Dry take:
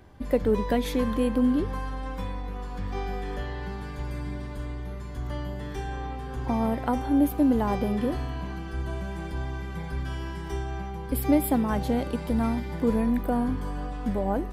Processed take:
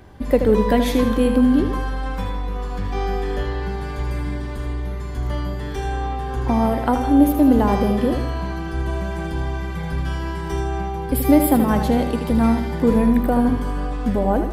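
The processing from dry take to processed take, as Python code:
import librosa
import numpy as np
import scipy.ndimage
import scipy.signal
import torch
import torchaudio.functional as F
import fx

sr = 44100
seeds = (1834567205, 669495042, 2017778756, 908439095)

y = fx.echo_feedback(x, sr, ms=79, feedback_pct=44, wet_db=-8.5)
y = y * librosa.db_to_amplitude(7.0)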